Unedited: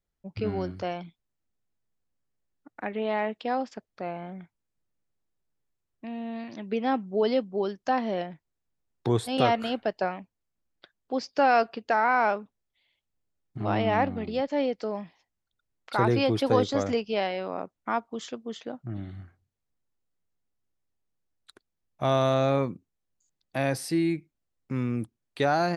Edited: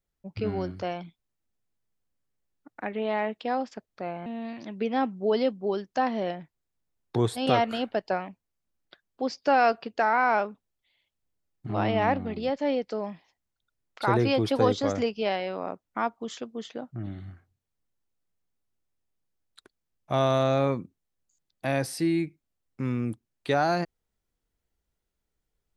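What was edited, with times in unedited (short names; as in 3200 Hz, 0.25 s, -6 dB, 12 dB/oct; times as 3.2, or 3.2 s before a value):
4.26–6.17 cut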